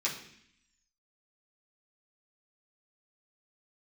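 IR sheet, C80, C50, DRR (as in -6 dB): 11.0 dB, 7.5 dB, -7.0 dB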